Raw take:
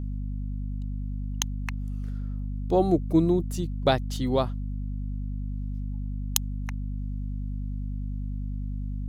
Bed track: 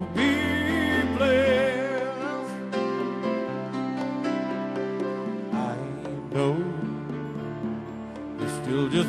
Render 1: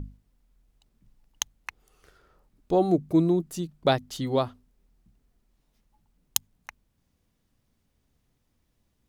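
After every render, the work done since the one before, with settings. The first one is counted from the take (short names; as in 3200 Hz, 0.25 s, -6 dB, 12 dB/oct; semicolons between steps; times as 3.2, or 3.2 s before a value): notches 50/100/150/200/250 Hz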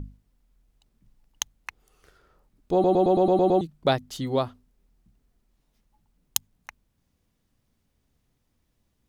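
2.73 stutter in place 0.11 s, 8 plays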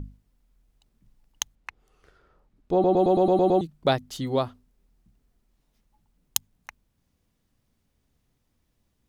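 1.55–2.97 LPF 3200 Hz 6 dB/oct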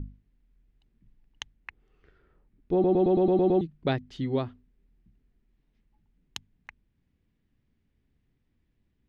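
LPF 2400 Hz 12 dB/oct; band shelf 840 Hz -8 dB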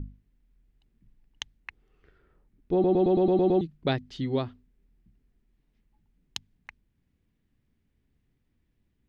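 dynamic EQ 4600 Hz, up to +5 dB, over -58 dBFS, Q 1.1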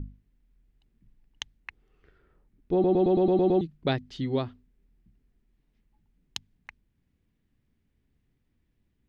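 nothing audible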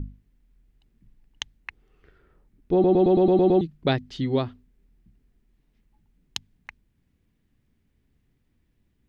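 gain +4 dB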